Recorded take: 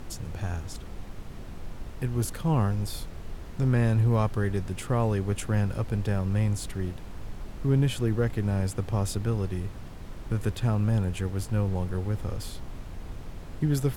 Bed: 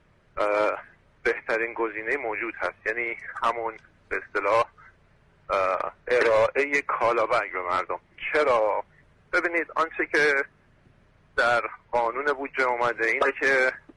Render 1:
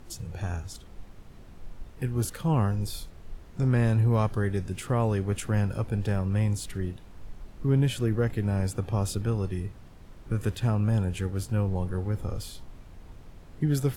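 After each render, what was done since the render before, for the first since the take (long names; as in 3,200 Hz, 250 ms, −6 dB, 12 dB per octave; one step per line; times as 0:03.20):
noise reduction from a noise print 8 dB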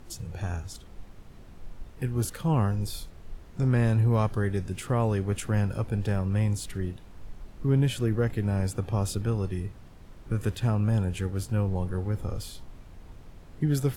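no processing that can be heard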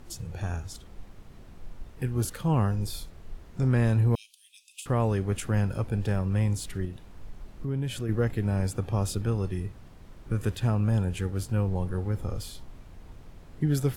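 0:04.15–0:04.86: Chebyshev high-pass with heavy ripple 2,500 Hz, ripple 3 dB
0:06.85–0:08.09: downward compressor 2 to 1, threshold −32 dBFS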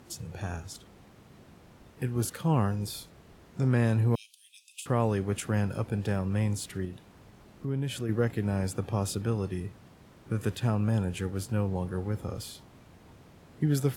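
high-pass filter 110 Hz 12 dB per octave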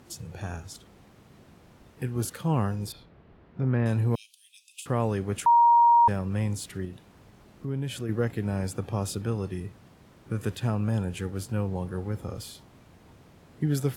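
0:02.92–0:03.86: high-frequency loss of the air 360 metres
0:05.46–0:06.08: beep over 942 Hz −14.5 dBFS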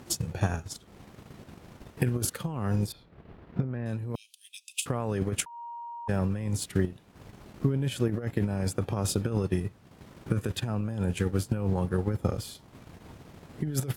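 compressor whose output falls as the input rises −31 dBFS, ratio −1
transient designer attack +7 dB, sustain −9 dB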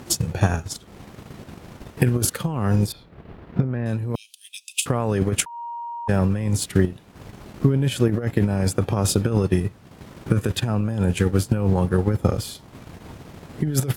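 level +8 dB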